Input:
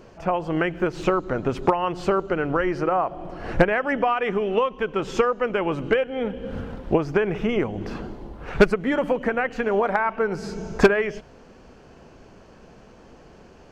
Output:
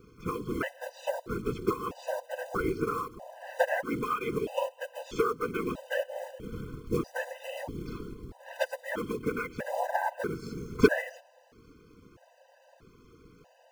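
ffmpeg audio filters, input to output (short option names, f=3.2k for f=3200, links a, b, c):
-af "acrusher=bits=5:mode=log:mix=0:aa=0.000001,afftfilt=real='hypot(re,im)*cos(2*PI*random(0))':imag='hypot(re,im)*sin(2*PI*random(1))':win_size=512:overlap=0.75,afftfilt=real='re*gt(sin(2*PI*0.78*pts/sr)*(1-2*mod(floor(b*sr/1024/510),2)),0)':imag='im*gt(sin(2*PI*0.78*pts/sr)*(1-2*mod(floor(b*sr/1024/510),2)),0)':win_size=1024:overlap=0.75"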